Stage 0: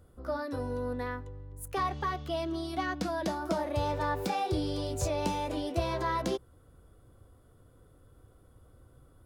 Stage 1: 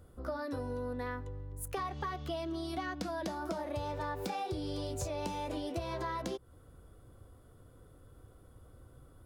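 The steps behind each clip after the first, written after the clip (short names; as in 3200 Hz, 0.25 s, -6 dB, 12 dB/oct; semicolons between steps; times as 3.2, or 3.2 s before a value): compressor, threshold -36 dBFS, peak gain reduction 11.5 dB; gain +1.5 dB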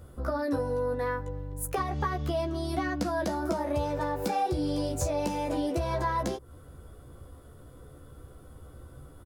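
dynamic EQ 3300 Hz, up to -6 dB, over -59 dBFS, Q 1.1; doubler 14 ms -4.5 dB; gain +7 dB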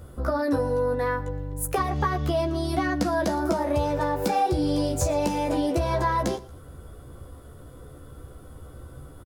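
feedback echo 0.116 s, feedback 31%, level -20 dB; gain +5 dB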